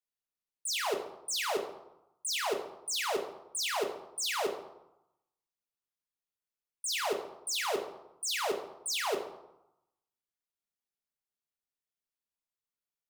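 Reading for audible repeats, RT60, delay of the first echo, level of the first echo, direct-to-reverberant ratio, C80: none, 0.90 s, none, none, 2.0 dB, 11.0 dB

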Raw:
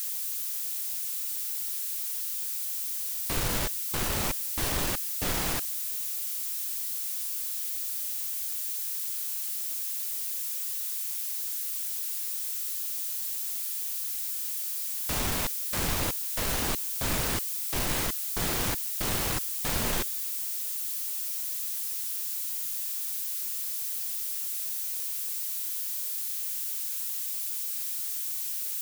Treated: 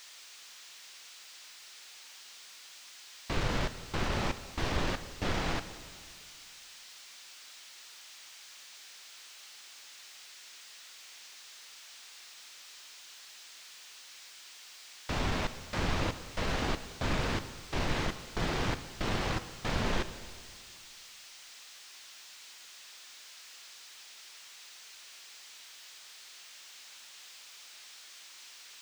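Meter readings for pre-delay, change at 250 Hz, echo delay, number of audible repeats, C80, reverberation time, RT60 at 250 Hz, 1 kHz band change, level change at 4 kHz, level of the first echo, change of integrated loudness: 7 ms, 0.0 dB, none, none, 13.5 dB, 2.1 s, 2.2 s, -0.5 dB, -4.5 dB, none, -10.5 dB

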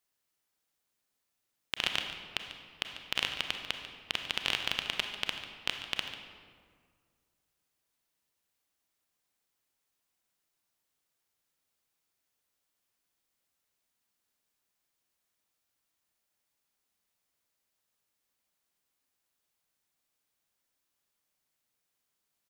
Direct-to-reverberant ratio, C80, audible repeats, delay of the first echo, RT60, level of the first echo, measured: 4.5 dB, 6.5 dB, 1, 0.144 s, 1.9 s, -13.5 dB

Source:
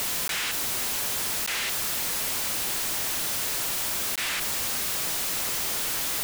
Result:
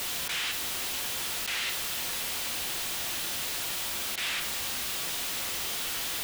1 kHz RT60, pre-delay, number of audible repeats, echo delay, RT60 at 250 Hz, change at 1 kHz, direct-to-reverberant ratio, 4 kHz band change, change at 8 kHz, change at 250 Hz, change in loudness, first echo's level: 0.55 s, 3 ms, none, none, 0.70 s, -4.0 dB, 5.0 dB, -1.5 dB, -5.5 dB, -5.0 dB, -4.5 dB, none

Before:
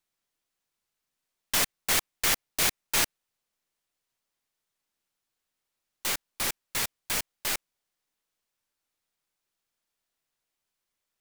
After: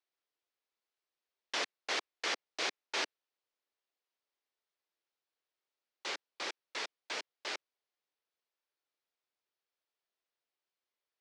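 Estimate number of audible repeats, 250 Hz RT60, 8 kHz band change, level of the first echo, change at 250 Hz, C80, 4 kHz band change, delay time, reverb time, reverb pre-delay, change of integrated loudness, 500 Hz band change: none, none, -17.0 dB, none, -10.0 dB, none, -7.5 dB, none, none, none, -11.0 dB, -4.0 dB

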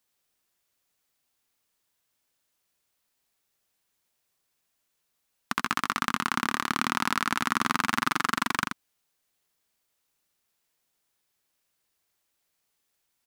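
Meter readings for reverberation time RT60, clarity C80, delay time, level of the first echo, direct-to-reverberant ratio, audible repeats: none, none, 82 ms, -5.5 dB, none, 1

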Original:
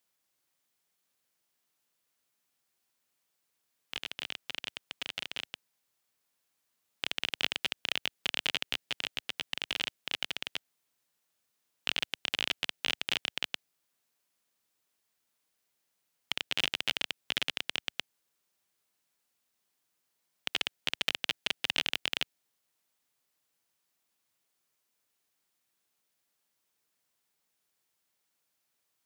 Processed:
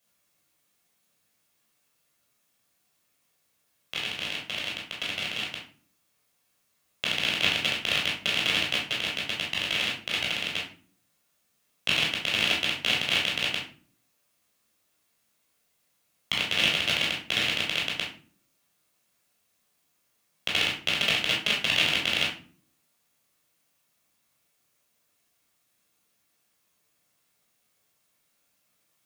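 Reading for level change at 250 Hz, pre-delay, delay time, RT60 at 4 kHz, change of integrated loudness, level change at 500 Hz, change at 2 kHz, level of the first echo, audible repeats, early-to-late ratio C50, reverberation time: +11.0 dB, 11 ms, none, 0.30 s, +8.0 dB, +9.5 dB, +9.0 dB, none, none, 5.0 dB, 0.45 s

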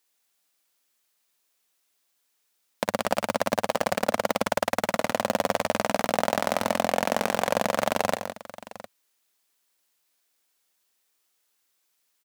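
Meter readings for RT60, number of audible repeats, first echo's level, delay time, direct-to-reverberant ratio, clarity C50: none, 3, -17.5 dB, 50 ms, none, none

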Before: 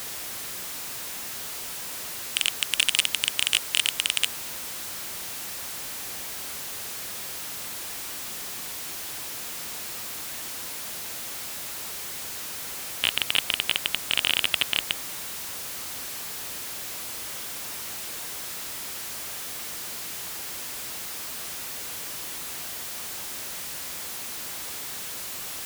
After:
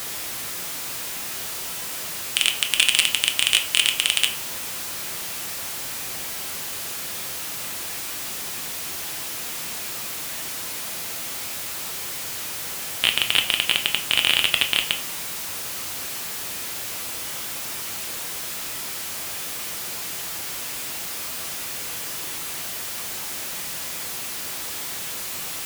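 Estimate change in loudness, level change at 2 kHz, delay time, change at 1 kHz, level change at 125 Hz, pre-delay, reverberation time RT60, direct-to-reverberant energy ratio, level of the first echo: +4.5 dB, +5.0 dB, none, +4.5 dB, +5.0 dB, 6 ms, 0.45 s, 5.5 dB, none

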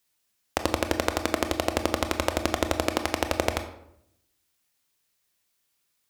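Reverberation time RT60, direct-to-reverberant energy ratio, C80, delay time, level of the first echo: 0.75 s, 7.0 dB, 13.0 dB, none, none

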